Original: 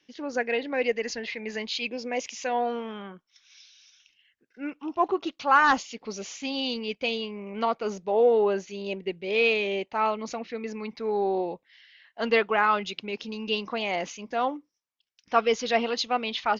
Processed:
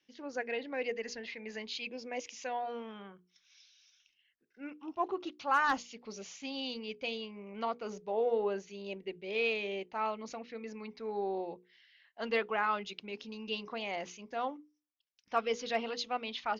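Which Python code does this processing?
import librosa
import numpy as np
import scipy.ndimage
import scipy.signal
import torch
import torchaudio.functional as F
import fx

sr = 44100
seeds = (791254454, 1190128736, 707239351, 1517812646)

y = fx.hum_notches(x, sr, base_hz=60, count=8)
y = np.clip(y, -10.0 ** (-10.0 / 20.0), 10.0 ** (-10.0 / 20.0))
y = y * librosa.db_to_amplitude(-9.0)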